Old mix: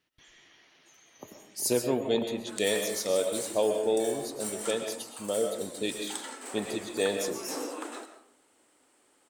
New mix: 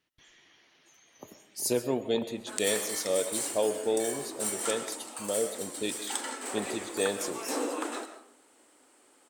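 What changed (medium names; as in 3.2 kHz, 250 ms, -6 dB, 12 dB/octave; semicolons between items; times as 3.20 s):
speech: send -7.5 dB; background +4.5 dB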